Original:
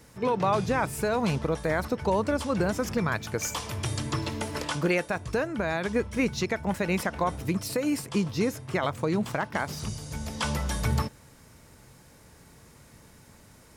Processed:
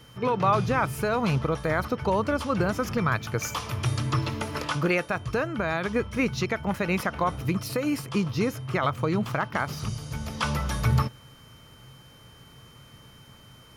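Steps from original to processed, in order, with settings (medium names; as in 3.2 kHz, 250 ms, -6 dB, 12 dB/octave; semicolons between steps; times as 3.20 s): graphic EQ with 31 bands 125 Hz +9 dB, 1.25 kHz +8 dB, 2.5 kHz +3 dB, 8 kHz -9 dB; whistle 3.1 kHz -55 dBFS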